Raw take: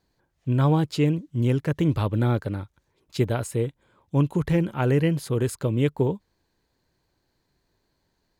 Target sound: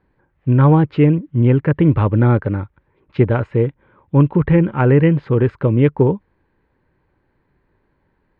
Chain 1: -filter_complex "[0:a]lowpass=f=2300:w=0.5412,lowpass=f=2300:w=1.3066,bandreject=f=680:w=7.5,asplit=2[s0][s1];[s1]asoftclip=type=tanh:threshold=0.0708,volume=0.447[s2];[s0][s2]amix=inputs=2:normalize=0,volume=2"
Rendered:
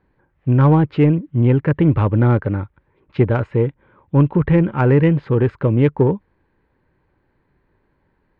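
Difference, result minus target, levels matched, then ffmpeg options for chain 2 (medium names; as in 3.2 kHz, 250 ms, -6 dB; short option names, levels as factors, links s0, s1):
saturation: distortion +14 dB
-filter_complex "[0:a]lowpass=f=2300:w=0.5412,lowpass=f=2300:w=1.3066,bandreject=f=680:w=7.5,asplit=2[s0][s1];[s1]asoftclip=type=tanh:threshold=0.251,volume=0.447[s2];[s0][s2]amix=inputs=2:normalize=0,volume=2"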